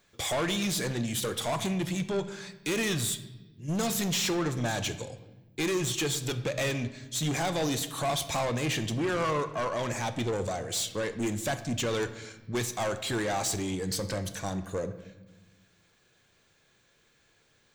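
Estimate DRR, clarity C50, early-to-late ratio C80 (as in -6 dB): 10.0 dB, 12.5 dB, 14.5 dB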